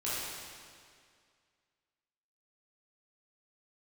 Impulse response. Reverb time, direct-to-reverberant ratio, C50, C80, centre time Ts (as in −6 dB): 2.1 s, −10.0 dB, −3.5 dB, −1.0 dB, 144 ms